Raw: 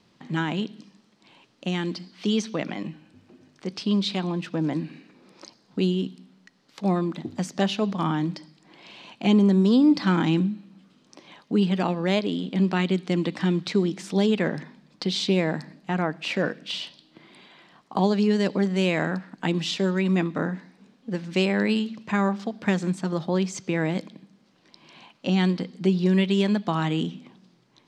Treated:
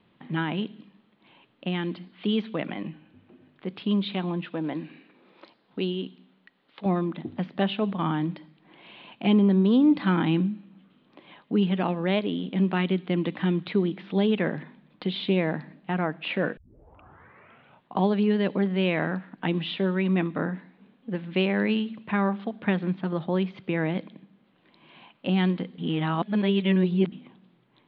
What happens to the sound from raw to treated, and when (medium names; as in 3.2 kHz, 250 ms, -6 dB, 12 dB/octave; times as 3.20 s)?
4.45–6.86 s: tone controls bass -8 dB, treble +6 dB
16.57 s: tape start 1.43 s
25.78–27.12 s: reverse
whole clip: steep low-pass 3.6 kHz 48 dB/octave; trim -1.5 dB